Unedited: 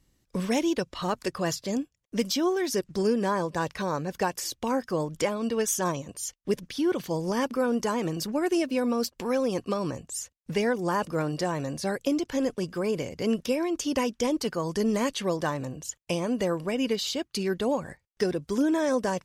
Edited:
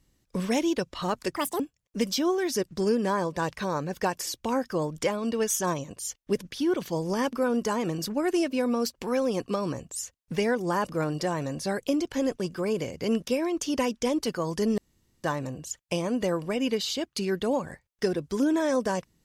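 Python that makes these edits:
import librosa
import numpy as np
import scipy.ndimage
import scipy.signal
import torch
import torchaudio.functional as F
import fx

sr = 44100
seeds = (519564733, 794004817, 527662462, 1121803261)

y = fx.edit(x, sr, fx.speed_span(start_s=1.36, length_s=0.42, speed=1.76),
    fx.room_tone_fill(start_s=14.96, length_s=0.46), tone=tone)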